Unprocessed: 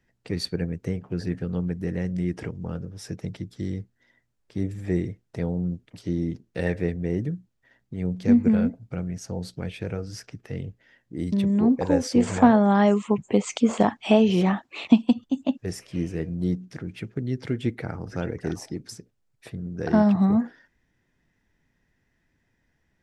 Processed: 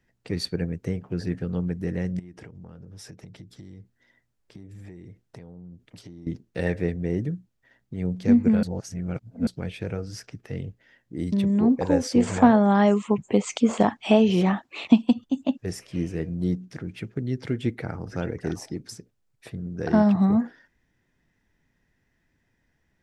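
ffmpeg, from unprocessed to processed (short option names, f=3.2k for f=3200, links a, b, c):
-filter_complex "[0:a]asettb=1/sr,asplit=3[a][b][c];[a]atrim=end=2.194[d];[b]atrim=start=2.19:end=6.27,asetpts=PTS-STARTPTS,afade=t=in:d=0.004:c=qsin,afade=t=out:st=4.076:d=0.004:c=qsin,acompressor=threshold=-39dB:ratio=12:attack=3.2:release=140:knee=1:detection=peak[e];[c]atrim=start=6.266[f];[d][e]acrossfade=d=0.004:c1=hsin:c2=qsin[g];[g][f]acrossfade=d=0.004:c1=qsin:c2=hsin,asplit=3[h][i][j];[h]atrim=end=8.632[k];[i]atrim=start=8.628:end=9.472,asetpts=PTS-STARTPTS,areverse[l];[j]atrim=start=9.468[m];[k][l]acrossfade=d=0.004:c1=hsin:c2=hsin[n];[n][m]acrossfade=d=0.004:c1=hsin:c2=hsin"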